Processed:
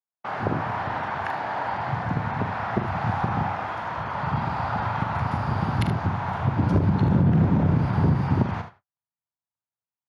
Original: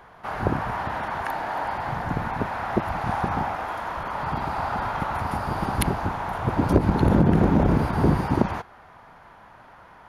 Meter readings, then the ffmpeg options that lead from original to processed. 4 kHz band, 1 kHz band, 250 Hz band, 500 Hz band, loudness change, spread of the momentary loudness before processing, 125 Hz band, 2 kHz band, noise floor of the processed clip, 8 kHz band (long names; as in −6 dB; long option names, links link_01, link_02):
−2.0 dB, −1.0 dB, −1.5 dB, −4.0 dB, 0.0 dB, 9 LU, +2.5 dB, −0.5 dB, below −85 dBFS, below −10 dB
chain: -af "lowpass=5200,agate=range=-56dB:threshold=-41dB:ratio=16:detection=peak,highpass=frequency=100:width=0.5412,highpass=frequency=100:width=1.3066,asubboost=boost=4.5:cutoff=150,acompressor=threshold=-21dB:ratio=2,aecho=1:1:44|75:0.335|0.282"